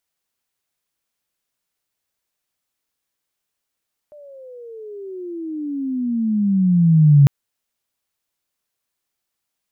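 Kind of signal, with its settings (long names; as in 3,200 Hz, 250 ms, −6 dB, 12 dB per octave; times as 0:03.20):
pitch glide with a swell sine, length 3.15 s, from 602 Hz, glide −25.5 semitones, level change +33 dB, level −6 dB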